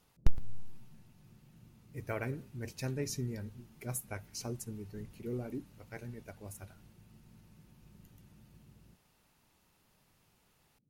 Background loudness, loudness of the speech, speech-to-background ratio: −61.0 LKFS, −41.5 LKFS, 19.5 dB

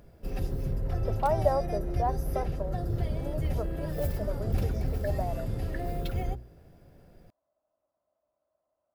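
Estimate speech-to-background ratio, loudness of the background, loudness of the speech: −1.0 dB, −33.5 LKFS, −34.5 LKFS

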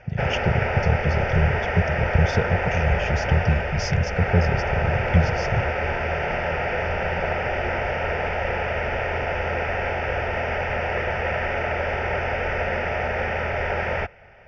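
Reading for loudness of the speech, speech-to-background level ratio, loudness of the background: −24.5 LKFS, 0.5 dB, −25.0 LKFS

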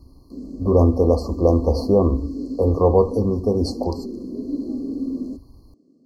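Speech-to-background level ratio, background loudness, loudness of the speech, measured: 11.5 dB, −31.0 LKFS, −19.5 LKFS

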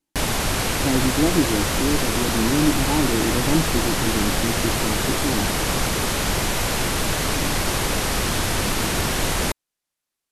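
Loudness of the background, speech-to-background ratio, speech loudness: −22.0 LKFS, −3.0 dB, −25.0 LKFS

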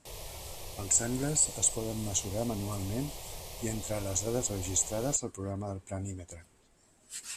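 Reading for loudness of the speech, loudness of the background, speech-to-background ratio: −31.5 LKFS, −43.5 LKFS, 12.0 dB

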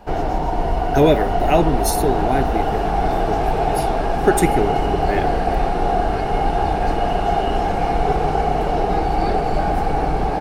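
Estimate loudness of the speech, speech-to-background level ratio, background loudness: −21.5 LKFS, −1.0 dB, −20.5 LKFS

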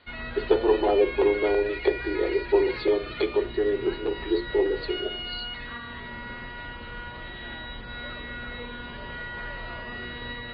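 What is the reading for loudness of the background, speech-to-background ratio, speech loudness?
−36.0 LKFS, 10.5 dB, −25.5 LKFS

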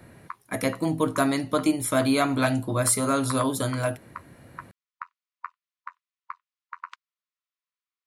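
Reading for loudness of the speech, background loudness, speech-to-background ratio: −25.0 LKFS, −44.5 LKFS, 19.5 dB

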